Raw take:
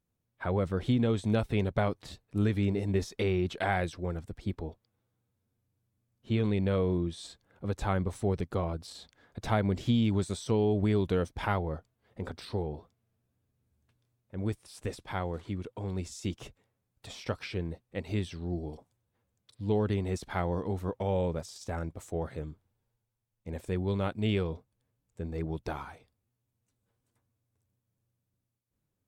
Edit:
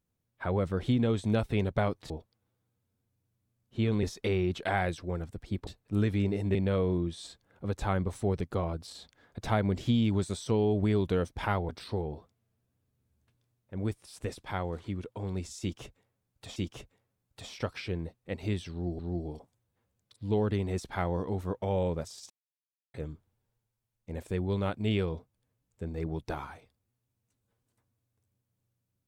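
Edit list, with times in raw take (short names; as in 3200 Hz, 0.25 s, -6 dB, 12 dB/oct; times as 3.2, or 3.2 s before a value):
2.1–2.98 swap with 4.62–6.55
11.69–12.3 cut
16.22–17.17 loop, 2 plays
18.37–18.65 loop, 2 plays
21.68–22.32 mute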